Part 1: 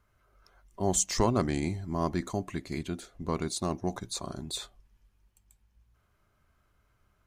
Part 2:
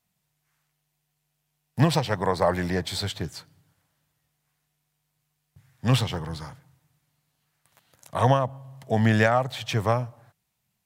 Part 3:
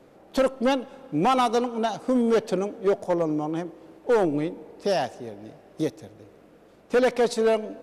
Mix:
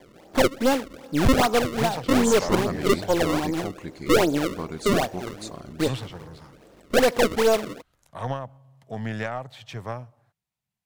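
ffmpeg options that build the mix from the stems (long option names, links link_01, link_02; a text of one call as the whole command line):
ffmpeg -i stem1.wav -i stem2.wav -i stem3.wav -filter_complex "[0:a]adelay=1300,volume=-2dB[link_01];[1:a]volume=-10dB[link_02];[2:a]lowpass=6400,acrusher=samples=31:mix=1:aa=0.000001:lfo=1:lforange=49.6:lforate=2.5,volume=2dB[link_03];[link_01][link_02][link_03]amix=inputs=3:normalize=0,highshelf=frequency=8400:gain=-5.5,aeval=exprs='0.422*(cos(1*acos(clip(val(0)/0.422,-1,1)))-cos(1*PI/2))+0.0266*(cos(6*acos(clip(val(0)/0.422,-1,1)))-cos(6*PI/2))':channel_layout=same" out.wav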